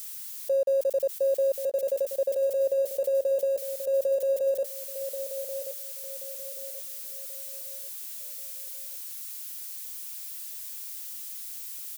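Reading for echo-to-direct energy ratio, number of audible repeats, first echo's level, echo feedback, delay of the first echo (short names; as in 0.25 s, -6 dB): -9.5 dB, 3, -10.0 dB, 35%, 1.082 s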